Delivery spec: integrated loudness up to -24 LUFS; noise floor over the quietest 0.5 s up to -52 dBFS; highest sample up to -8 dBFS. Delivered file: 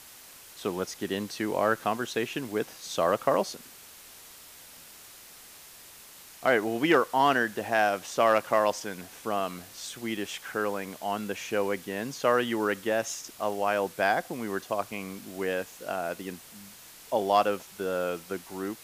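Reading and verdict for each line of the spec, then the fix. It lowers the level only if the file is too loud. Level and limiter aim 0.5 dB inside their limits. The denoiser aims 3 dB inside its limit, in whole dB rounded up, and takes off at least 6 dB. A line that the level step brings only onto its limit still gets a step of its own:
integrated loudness -29.0 LUFS: pass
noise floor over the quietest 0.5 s -50 dBFS: fail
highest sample -10.5 dBFS: pass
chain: noise reduction 6 dB, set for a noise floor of -50 dBFS

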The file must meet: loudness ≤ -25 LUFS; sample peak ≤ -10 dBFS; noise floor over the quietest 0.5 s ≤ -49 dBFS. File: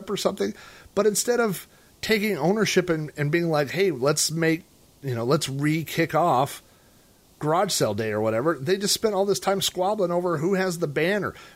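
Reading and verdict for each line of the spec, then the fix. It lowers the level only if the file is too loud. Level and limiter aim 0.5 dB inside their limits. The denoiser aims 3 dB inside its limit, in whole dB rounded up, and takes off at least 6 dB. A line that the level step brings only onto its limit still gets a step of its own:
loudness -24.0 LUFS: fail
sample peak -7.5 dBFS: fail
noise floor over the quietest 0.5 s -56 dBFS: pass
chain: trim -1.5 dB; peak limiter -10.5 dBFS

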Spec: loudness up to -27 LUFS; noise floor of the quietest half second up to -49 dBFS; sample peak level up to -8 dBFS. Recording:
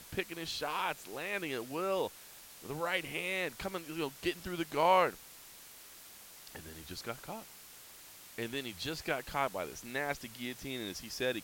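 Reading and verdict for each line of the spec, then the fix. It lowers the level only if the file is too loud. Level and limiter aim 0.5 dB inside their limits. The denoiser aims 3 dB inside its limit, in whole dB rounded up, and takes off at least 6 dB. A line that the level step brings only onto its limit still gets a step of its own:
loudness -36.0 LUFS: pass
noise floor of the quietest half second -54 dBFS: pass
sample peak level -14.5 dBFS: pass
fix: none needed

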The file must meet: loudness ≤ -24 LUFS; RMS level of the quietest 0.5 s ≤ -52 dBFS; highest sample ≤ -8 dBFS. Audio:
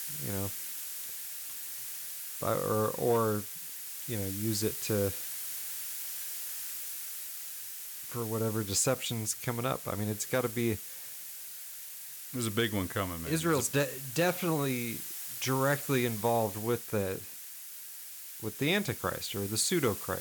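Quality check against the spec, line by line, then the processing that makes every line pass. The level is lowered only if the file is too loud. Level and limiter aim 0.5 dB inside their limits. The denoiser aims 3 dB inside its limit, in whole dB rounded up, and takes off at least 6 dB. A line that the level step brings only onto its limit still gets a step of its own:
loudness -32.5 LUFS: pass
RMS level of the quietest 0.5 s -45 dBFS: fail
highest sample -16.0 dBFS: pass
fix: noise reduction 10 dB, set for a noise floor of -45 dBFS

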